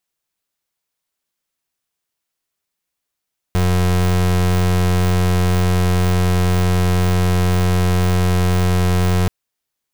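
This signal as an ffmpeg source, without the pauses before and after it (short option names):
-f lavfi -i "aevalsrc='0.178*(2*lt(mod(90.2*t,1),0.31)-1)':d=5.73:s=44100"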